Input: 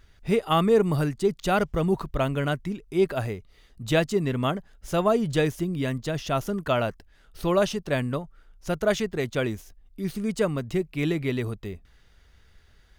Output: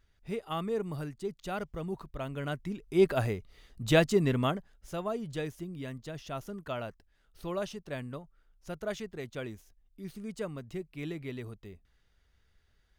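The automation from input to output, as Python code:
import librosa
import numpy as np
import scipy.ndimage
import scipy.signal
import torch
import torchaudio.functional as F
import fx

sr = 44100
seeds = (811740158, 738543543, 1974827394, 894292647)

y = fx.gain(x, sr, db=fx.line((2.2, -13.0), (3.04, -1.0), (4.31, -1.0), (5.0, -12.5)))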